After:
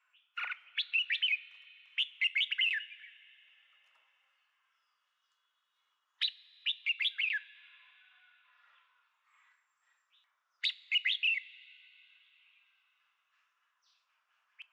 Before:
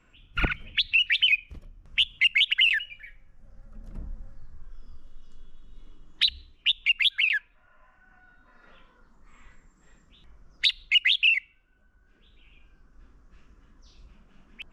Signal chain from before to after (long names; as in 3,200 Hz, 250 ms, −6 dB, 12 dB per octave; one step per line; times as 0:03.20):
high-pass filter 1,000 Hz 24 dB per octave
high-shelf EQ 6,100 Hz −10.5 dB
coupled-rooms reverb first 0.26 s, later 3.9 s, from −18 dB, DRR 14.5 dB
level −8 dB